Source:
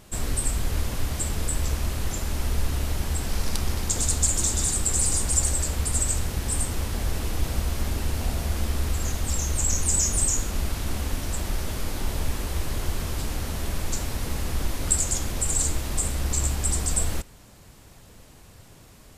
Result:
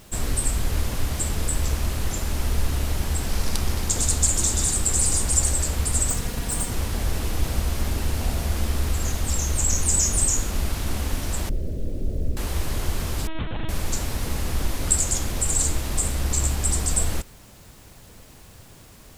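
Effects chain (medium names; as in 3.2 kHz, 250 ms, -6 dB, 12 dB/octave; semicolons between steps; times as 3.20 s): 6.10–6.72 s: comb filter that takes the minimum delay 4.2 ms; 11.49–12.37 s: steep low-pass 590 Hz 48 dB/octave; bit crusher 9-bit; 13.27–13.69 s: LPC vocoder at 8 kHz pitch kept; trim +2 dB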